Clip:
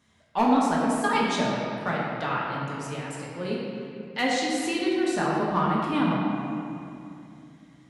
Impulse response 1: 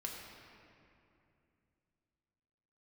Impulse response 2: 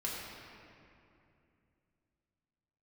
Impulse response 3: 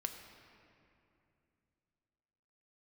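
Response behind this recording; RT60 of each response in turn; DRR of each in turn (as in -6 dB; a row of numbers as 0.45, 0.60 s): 2; 2.7, 2.7, 2.7 s; -1.5, -5.5, 5.0 dB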